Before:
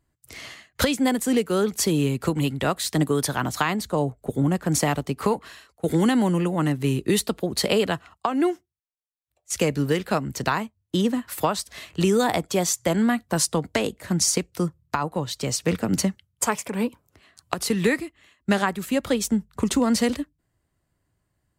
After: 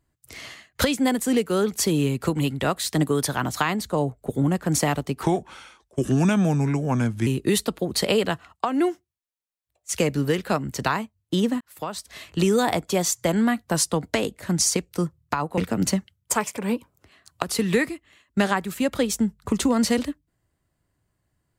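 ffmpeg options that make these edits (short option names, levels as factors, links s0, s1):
-filter_complex "[0:a]asplit=5[s0][s1][s2][s3][s4];[s0]atrim=end=5.234[s5];[s1]atrim=start=5.23:end=6.88,asetpts=PTS-STARTPTS,asetrate=35721,aresample=44100,atrim=end_sample=89833,asetpts=PTS-STARTPTS[s6];[s2]atrim=start=6.876:end=11.22,asetpts=PTS-STARTPTS,afade=t=out:st=4.34:d=0.004:c=hsin[s7];[s3]atrim=start=11.22:end=15.192,asetpts=PTS-STARTPTS,afade=t=in:d=0.66[s8];[s4]atrim=start=15.688[s9];[s5][s6]acrossfade=d=0.004:c1=hsin:c2=hsin[s10];[s7][s8]concat=n=2:v=0:a=1[s11];[s10][s11]acrossfade=d=0.004:c1=hsin:c2=hsin[s12];[s12][s9]acrossfade=d=0.004:c1=hsin:c2=hsin"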